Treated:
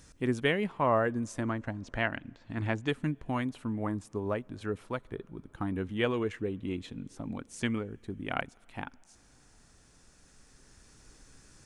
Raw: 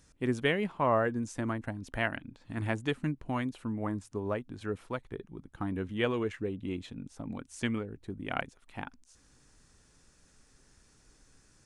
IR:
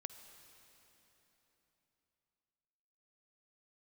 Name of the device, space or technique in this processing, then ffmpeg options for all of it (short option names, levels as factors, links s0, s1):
ducked reverb: -filter_complex "[0:a]asettb=1/sr,asplit=3[s0][s1][s2];[s0]atrim=end=1.434[s3];[s1]atrim=start=1.43:end=2.87,asetpts=PTS-STARTPTS,afade=t=in:d=0.004:c=qsin,afade=t=out:st=1.436:d=0.004:c=qsin,lowpass=f=7000:w=0.5412,lowpass=f=7000:w=1.3066[s4];[s2]atrim=start=2.866[s5];[s3][s4]acrossfade=d=0.004:c1=hsin:c2=qsin[s6];[s6][s5]acrossfade=d=0.004:c1=qsin:c2=hsin,asplit=3[s7][s8][s9];[1:a]atrim=start_sample=2205[s10];[s8][s10]afir=irnorm=-1:irlink=0[s11];[s9]apad=whole_len=513888[s12];[s11][s12]sidechaincompress=threshold=0.00158:ratio=3:attack=5.2:release=1380,volume=2[s13];[s7][s13]amix=inputs=2:normalize=0"